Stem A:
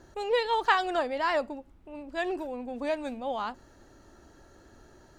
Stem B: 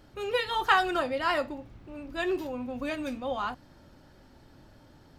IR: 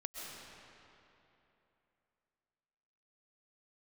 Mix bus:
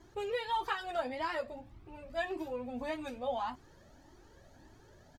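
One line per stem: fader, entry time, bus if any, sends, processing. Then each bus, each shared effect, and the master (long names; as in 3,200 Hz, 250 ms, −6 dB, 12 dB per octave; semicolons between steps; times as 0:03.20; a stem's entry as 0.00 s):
0.0 dB, 0.00 s, no send, downward compressor, threshold −28 dBFS, peak gain reduction 10 dB; notch comb filter 1,400 Hz
−2.5 dB, 8.8 ms, no send, downward compressor 2.5 to 1, threshold −32 dBFS, peak gain reduction 10 dB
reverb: not used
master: flanger whose copies keep moving one way rising 1.7 Hz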